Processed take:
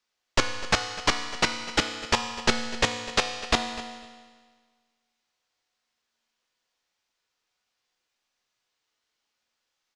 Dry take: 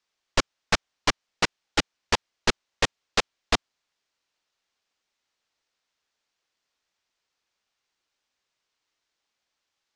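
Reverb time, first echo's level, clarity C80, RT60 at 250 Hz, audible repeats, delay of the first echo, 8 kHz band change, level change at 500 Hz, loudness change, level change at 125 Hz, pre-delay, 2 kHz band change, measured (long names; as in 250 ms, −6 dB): 1.6 s, −17.0 dB, 8.5 dB, 1.6 s, 1, 250 ms, +1.0 dB, +1.0 dB, +1.0 dB, +0.5 dB, 4 ms, +1.5 dB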